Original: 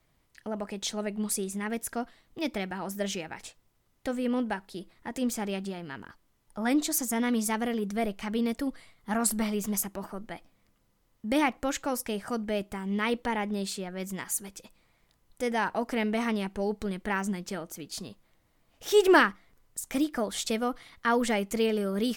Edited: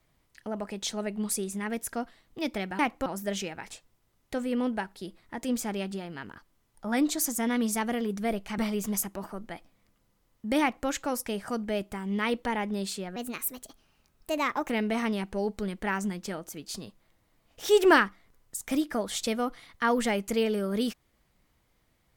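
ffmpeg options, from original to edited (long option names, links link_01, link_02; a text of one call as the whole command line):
ffmpeg -i in.wav -filter_complex "[0:a]asplit=6[link_01][link_02][link_03][link_04][link_05][link_06];[link_01]atrim=end=2.792[link_07];[link_02]atrim=start=11.408:end=11.682[link_08];[link_03]atrim=start=2.788:end=8.312[link_09];[link_04]atrim=start=9.378:end=13.964[link_10];[link_05]atrim=start=13.96:end=15.93,asetpts=PTS-STARTPTS,asetrate=56448,aresample=44100[link_11];[link_06]atrim=start=15.926[link_12];[link_07][link_08]acrossfade=duration=0.004:curve1=hsin:curve2=hsin[link_13];[link_13][link_09]acrossfade=duration=0.004:curve1=hsin:curve2=hsin[link_14];[link_14][link_10]acrossfade=duration=0.004:curve1=hsin:curve2=hsin[link_15];[link_15][link_11]acrossfade=duration=0.004:curve1=hsin:curve2=hsin[link_16];[link_16][link_12]acrossfade=duration=0.004:curve1=hsin:curve2=hsin" out.wav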